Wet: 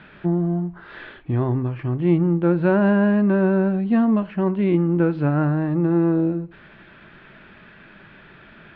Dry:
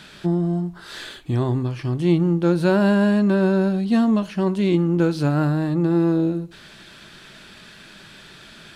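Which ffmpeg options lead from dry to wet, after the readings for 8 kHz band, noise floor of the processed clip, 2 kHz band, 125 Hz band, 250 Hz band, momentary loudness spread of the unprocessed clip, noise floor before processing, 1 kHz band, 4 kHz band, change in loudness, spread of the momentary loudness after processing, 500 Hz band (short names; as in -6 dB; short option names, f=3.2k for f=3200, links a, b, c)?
n/a, -48 dBFS, -0.5 dB, 0.0 dB, 0.0 dB, 9 LU, -45 dBFS, 0.0 dB, under -10 dB, 0.0 dB, 9 LU, 0.0 dB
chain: -af "lowpass=f=2.4k:w=0.5412,lowpass=f=2.4k:w=1.3066"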